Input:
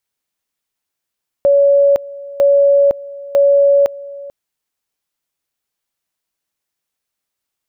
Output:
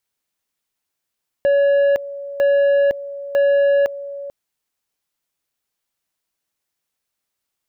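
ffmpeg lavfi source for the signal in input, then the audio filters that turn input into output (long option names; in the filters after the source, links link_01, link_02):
-f lavfi -i "aevalsrc='pow(10,(-7-20*gte(mod(t,0.95),0.51))/20)*sin(2*PI*563*t)':duration=2.85:sample_rate=44100"
-af "asoftclip=type=tanh:threshold=-12.5dB"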